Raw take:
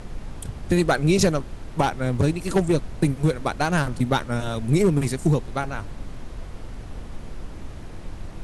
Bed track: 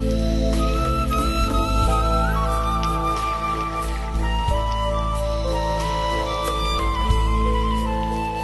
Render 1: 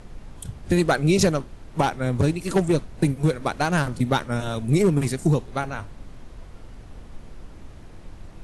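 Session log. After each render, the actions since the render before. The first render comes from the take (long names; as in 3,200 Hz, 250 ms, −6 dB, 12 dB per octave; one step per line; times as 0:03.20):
noise reduction from a noise print 6 dB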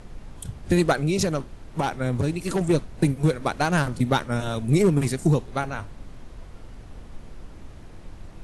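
0:00.92–0:02.61: downward compressor 3 to 1, threshold −20 dBFS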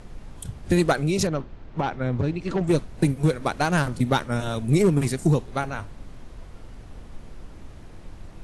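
0:01.27–0:02.68: high-frequency loss of the air 170 metres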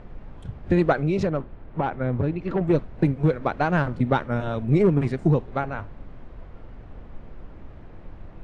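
low-pass filter 2,200 Hz 12 dB per octave
parametric band 560 Hz +2 dB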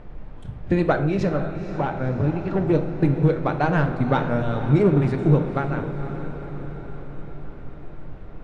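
feedback delay with all-pass diffusion 493 ms, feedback 61%, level −10.5 dB
rectangular room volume 280 cubic metres, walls mixed, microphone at 0.47 metres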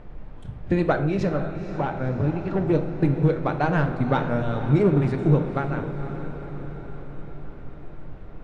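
level −1.5 dB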